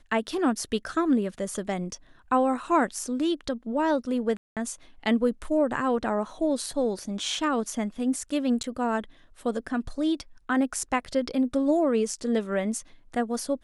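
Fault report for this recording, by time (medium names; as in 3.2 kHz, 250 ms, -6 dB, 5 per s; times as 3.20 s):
4.37–4.57 s: dropout 197 ms
8.63–8.64 s: dropout 8.8 ms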